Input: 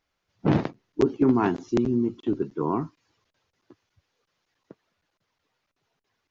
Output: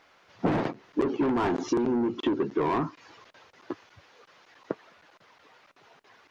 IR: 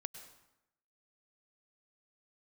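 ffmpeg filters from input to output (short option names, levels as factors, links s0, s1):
-filter_complex "[0:a]asplit=2[s0][s1];[s1]highpass=f=720:p=1,volume=25.1,asoftclip=type=tanh:threshold=0.398[s2];[s0][s2]amix=inputs=2:normalize=0,lowpass=f=1500:p=1,volume=0.501,acompressor=threshold=0.0501:ratio=16,volume=1.41"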